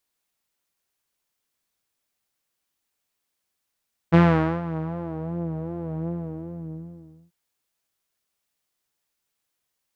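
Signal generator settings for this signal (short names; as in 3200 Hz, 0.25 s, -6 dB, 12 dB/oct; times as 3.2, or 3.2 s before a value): synth patch with vibrato E3, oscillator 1 saw, sub -19.5 dB, filter lowpass, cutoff 250 Hz, Q 0.96, filter envelope 3 oct, filter decay 1.30 s, attack 24 ms, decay 0.47 s, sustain -15.5 dB, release 1.25 s, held 1.94 s, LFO 2.6 Hz, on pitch 71 cents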